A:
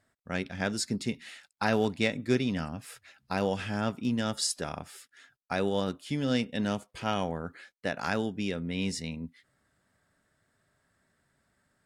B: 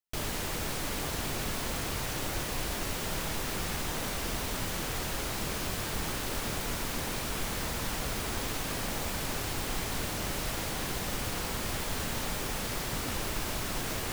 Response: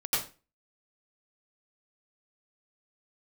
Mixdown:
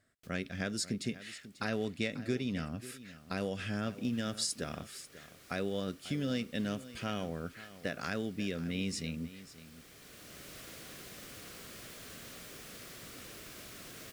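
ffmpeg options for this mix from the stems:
-filter_complex "[0:a]acompressor=threshold=-31dB:ratio=2.5,volume=-1dB,asplit=3[a][b][c];[b]volume=-16dB[d];[1:a]highpass=f=170:p=1,adelay=100,volume=-13.5dB,afade=t=in:st=3.61:d=0.44:silence=0.334965,asplit=2[e][f];[f]volume=-20.5dB[g];[c]apad=whole_len=627472[h];[e][h]sidechaincompress=threshold=-55dB:ratio=8:attack=16:release=885[i];[2:a]atrim=start_sample=2205[j];[g][j]afir=irnorm=-1:irlink=0[k];[d]aecho=0:1:541:1[l];[a][i][k][l]amix=inputs=4:normalize=0,equalizer=f=880:w=3.5:g=-13.5"

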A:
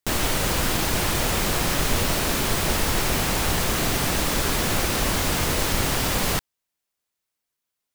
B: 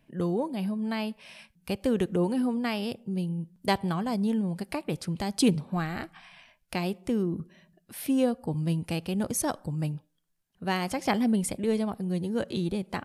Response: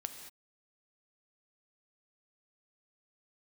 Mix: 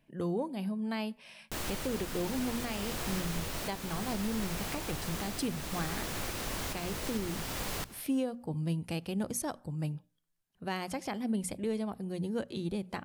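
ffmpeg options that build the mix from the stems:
-filter_complex "[0:a]adelay=1450,volume=-13dB,asplit=2[a][b];[b]volume=-19.5dB[c];[1:a]volume=-4dB[d];[c]aecho=0:1:171|342|513|684|855:1|0.37|0.137|0.0507|0.0187[e];[a][d][e]amix=inputs=3:normalize=0,bandreject=f=60:t=h:w=6,bandreject=f=120:t=h:w=6,bandreject=f=180:t=h:w=6,bandreject=f=240:t=h:w=6,alimiter=limit=-23.5dB:level=0:latency=1:release=394"

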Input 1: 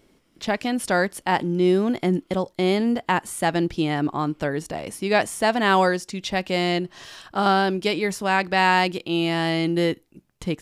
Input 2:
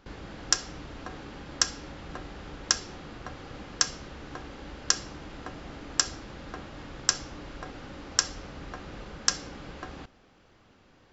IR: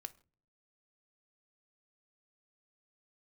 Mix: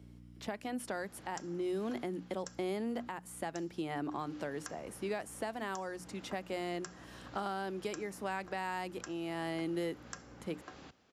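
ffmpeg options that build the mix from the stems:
-filter_complex "[0:a]bandreject=f=60:t=h:w=6,bandreject=f=120:t=h:w=6,bandreject=f=180:t=h:w=6,bandreject=f=240:t=h:w=6,bandreject=f=300:t=h:w=6,aeval=exprs='val(0)+0.01*(sin(2*PI*60*n/s)+sin(2*PI*2*60*n/s)/2+sin(2*PI*3*60*n/s)/3+sin(2*PI*4*60*n/s)/4+sin(2*PI*5*60*n/s)/5)':c=same,volume=-8dB[a];[1:a]highshelf=f=4.8k:g=8,adelay=850,afade=t=out:st=1.81:d=0.53:silence=0.334965,afade=t=in:st=4.1:d=0.33:silence=0.316228[b];[a][b]amix=inputs=2:normalize=0,highpass=87,acrossover=split=210|2200|7700[c][d][e][f];[c]acompressor=threshold=-52dB:ratio=4[g];[d]acompressor=threshold=-34dB:ratio=4[h];[e]acompressor=threshold=-55dB:ratio=4[i];[f]acompressor=threshold=-47dB:ratio=4[j];[g][h][i][j]amix=inputs=4:normalize=0,alimiter=level_in=2dB:limit=-24dB:level=0:latency=1:release=467,volume=-2dB"

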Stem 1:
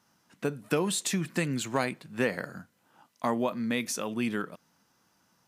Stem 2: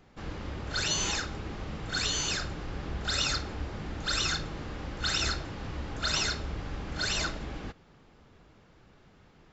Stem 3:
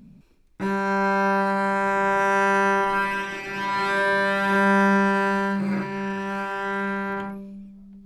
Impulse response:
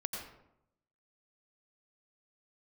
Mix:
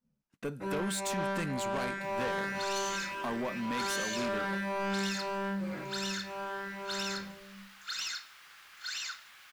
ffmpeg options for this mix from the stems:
-filter_complex "[0:a]agate=range=-25dB:threshold=-56dB:ratio=16:detection=peak,volume=-3dB[a];[1:a]highpass=f=1.3k:w=0.5412,highpass=f=1.3k:w=1.3066,acrusher=bits=8:mix=0:aa=0.000001,adelay=1850,volume=-5.5dB[b];[2:a]agate=range=-33dB:threshold=-35dB:ratio=3:detection=peak,equalizer=f=520:w=6.2:g=12.5,asplit=2[c][d];[d]adelay=9.4,afreqshift=-1.9[e];[c][e]amix=inputs=2:normalize=1,volume=-7.5dB[f];[a][b][f]amix=inputs=3:normalize=0,asoftclip=type=tanh:threshold=-28.5dB"

